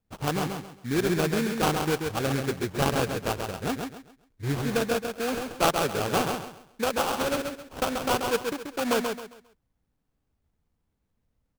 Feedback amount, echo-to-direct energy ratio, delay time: 30%, −4.5 dB, 134 ms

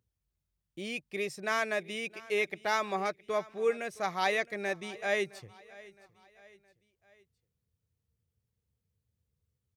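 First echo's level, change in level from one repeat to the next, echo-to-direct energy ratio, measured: −21.0 dB, −6.5 dB, −20.0 dB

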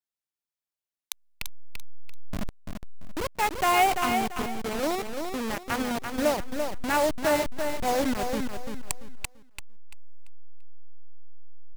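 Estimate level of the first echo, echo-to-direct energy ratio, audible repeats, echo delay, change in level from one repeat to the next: −6.0 dB, −5.5 dB, 3, 340 ms, −11.0 dB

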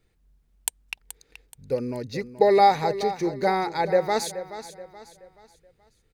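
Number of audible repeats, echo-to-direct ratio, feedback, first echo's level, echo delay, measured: 3, −12.5 dB, 39%, −13.0 dB, 427 ms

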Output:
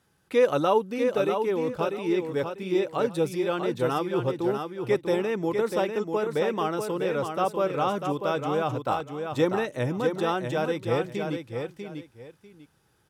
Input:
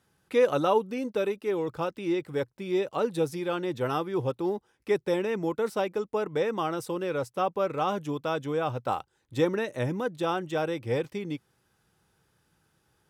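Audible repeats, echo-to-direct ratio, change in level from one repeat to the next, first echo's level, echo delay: 2, −6.0 dB, −13.0 dB, −6.0 dB, 645 ms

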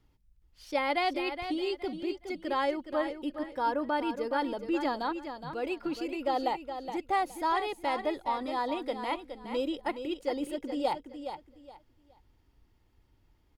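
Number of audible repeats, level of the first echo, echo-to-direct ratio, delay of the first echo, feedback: 3, −9.0 dB, −8.5 dB, 418 ms, 24%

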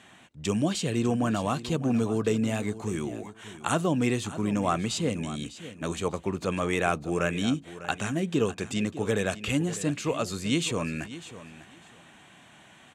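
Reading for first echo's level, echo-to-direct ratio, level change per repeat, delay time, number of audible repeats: −15.0 dB, −15.0 dB, −14.5 dB, 600 ms, 2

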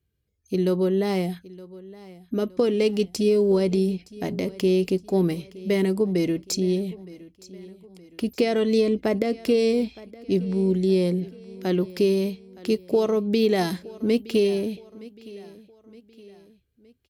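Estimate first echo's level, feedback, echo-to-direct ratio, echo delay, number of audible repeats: −20.0 dB, 45%, −19.0 dB, 917 ms, 3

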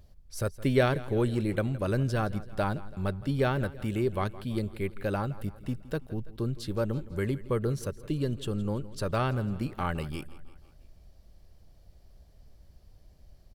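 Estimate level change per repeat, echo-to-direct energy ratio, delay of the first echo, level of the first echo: −5.5 dB, −16.5 dB, 166 ms, −18.0 dB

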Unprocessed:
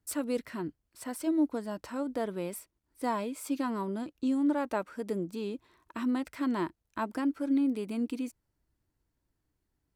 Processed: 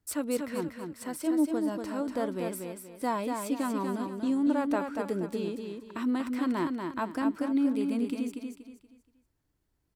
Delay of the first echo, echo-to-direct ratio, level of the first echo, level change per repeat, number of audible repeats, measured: 238 ms, −4.5 dB, −5.0 dB, −10.0 dB, 4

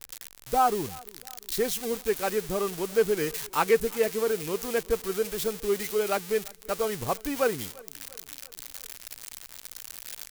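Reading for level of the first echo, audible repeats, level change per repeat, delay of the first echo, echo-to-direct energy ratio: −23.5 dB, 3, −5.5 dB, 345 ms, −22.0 dB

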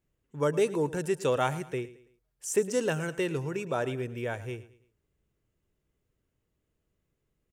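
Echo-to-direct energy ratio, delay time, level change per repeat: −16.5 dB, 110 ms, −8.5 dB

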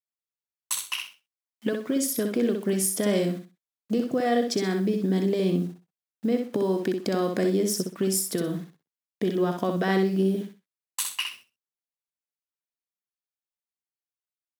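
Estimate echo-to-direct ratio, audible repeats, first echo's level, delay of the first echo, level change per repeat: −5.0 dB, 3, −5.5 dB, 63 ms, −12.5 dB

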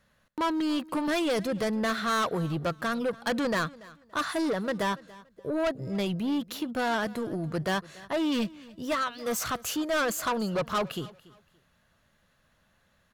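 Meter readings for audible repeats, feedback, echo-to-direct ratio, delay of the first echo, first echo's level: 2, 26%, −20.5 dB, 285 ms, −21.0 dB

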